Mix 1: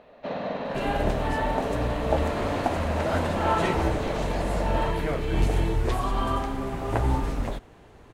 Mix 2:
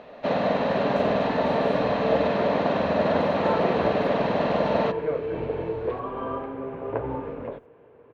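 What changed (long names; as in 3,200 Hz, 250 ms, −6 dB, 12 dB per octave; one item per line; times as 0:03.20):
first sound +7.5 dB
second sound: add loudspeaker in its box 180–2,100 Hz, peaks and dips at 200 Hz −9 dB, 330 Hz −4 dB, 480 Hz +9 dB, 770 Hz −8 dB, 1,300 Hz −6 dB, 1,900 Hz −9 dB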